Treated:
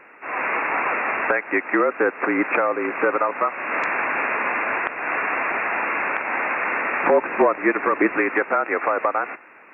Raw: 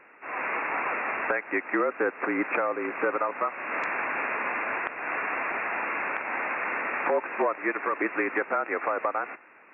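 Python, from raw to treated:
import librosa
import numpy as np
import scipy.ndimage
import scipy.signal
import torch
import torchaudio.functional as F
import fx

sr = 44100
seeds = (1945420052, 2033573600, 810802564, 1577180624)

y = fx.low_shelf(x, sr, hz=280.0, db=10.0, at=(7.03, 8.18))
y = y * librosa.db_to_amplitude(6.5)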